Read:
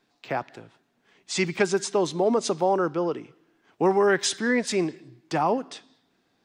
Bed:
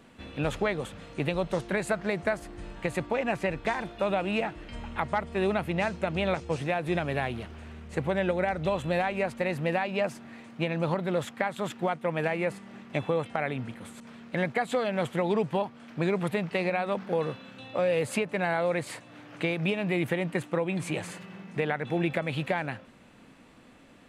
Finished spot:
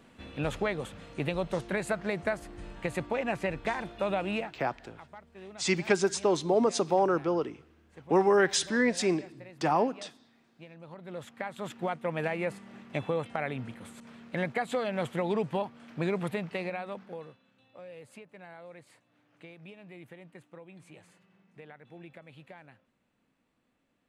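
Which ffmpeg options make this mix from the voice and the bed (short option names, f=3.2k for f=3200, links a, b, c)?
-filter_complex "[0:a]adelay=4300,volume=-2.5dB[a];[1:a]volume=15dB,afade=t=out:st=4.33:d=0.25:silence=0.125893,afade=t=in:st=10.89:d=1.09:silence=0.133352,afade=t=out:st=16.17:d=1.21:silence=0.125893[b];[a][b]amix=inputs=2:normalize=0"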